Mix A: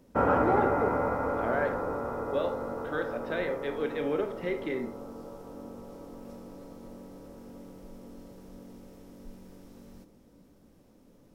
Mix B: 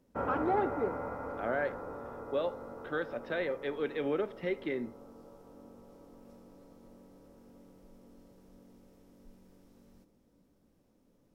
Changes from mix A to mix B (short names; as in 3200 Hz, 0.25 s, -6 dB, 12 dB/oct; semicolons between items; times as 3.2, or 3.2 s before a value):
speech: send -10.5 dB; background -10.0 dB